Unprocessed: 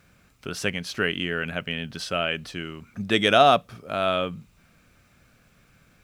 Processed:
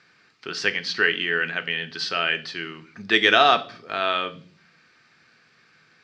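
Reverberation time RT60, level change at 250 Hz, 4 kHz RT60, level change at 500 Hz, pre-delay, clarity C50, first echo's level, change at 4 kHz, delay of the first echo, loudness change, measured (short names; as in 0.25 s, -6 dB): 0.45 s, -3.5 dB, 0.40 s, -2.5 dB, 3 ms, 17.5 dB, none, +4.0 dB, none, +2.0 dB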